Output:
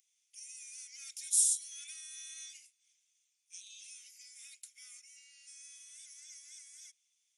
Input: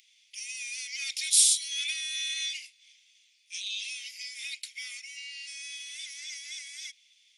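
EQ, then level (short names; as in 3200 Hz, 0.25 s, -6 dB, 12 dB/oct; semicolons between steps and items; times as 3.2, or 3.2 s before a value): HPF 1100 Hz; band shelf 3000 Hz -15.5 dB; -5.5 dB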